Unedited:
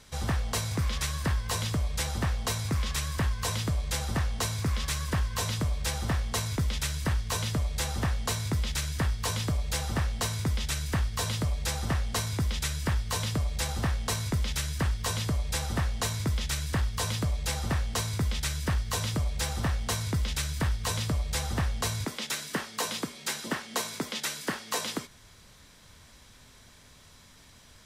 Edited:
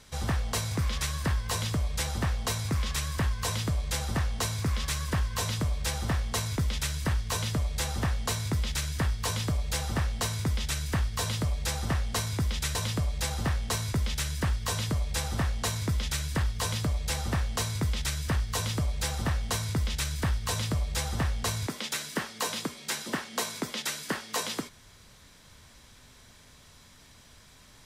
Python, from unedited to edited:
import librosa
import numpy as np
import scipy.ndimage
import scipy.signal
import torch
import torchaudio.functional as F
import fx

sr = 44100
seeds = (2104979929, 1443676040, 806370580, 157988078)

y = fx.edit(x, sr, fx.cut(start_s=12.75, length_s=0.38), tone=tone)